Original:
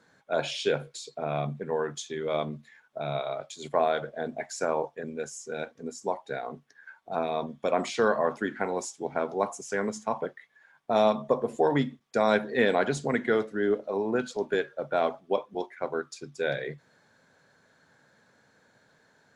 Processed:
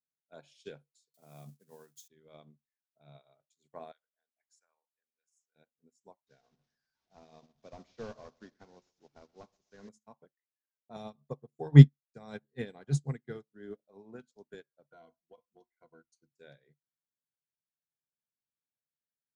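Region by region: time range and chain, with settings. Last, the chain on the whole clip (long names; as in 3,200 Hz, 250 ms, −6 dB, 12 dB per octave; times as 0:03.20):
0:01.14–0:02.08: spike at every zero crossing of −33 dBFS + high-pass filter 110 Hz 24 dB per octave
0:03.92–0:05.56: high-pass filter 1,300 Hz + high-shelf EQ 2,600 Hz −3 dB
0:06.27–0:09.89: linear delta modulator 32 kbit/s, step −37 dBFS + echo with a time of its own for lows and highs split 440 Hz, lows 99 ms, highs 129 ms, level −13 dB
0:10.96–0:13.54: parametric band 140 Hz +14.5 dB 0.79 octaves + comb filter 2.5 ms, depth 32% + expander for the loud parts, over −30 dBFS
0:14.91–0:16.32: EQ curve with evenly spaced ripples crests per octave 1.9, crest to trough 15 dB + downward compressor 4 to 1, threshold −25 dBFS
whole clip: bass and treble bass +10 dB, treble +10 dB; expander for the loud parts 2.5 to 1, over −39 dBFS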